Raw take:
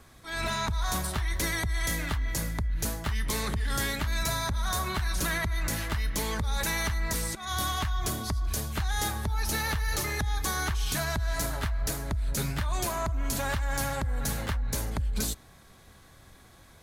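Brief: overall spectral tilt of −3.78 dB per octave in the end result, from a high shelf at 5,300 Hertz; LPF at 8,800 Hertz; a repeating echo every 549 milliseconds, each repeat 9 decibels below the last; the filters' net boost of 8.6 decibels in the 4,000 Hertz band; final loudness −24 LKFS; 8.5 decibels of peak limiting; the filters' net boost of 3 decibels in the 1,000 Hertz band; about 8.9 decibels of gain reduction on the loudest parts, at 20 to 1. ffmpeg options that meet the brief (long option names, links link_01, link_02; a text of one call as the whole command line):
ffmpeg -i in.wav -af "lowpass=8800,equalizer=frequency=1000:width_type=o:gain=3,equalizer=frequency=4000:width_type=o:gain=7.5,highshelf=frequency=5300:gain=6,acompressor=threshold=-32dB:ratio=20,alimiter=level_in=3.5dB:limit=-24dB:level=0:latency=1,volume=-3.5dB,aecho=1:1:549|1098|1647|2196:0.355|0.124|0.0435|0.0152,volume=12.5dB" out.wav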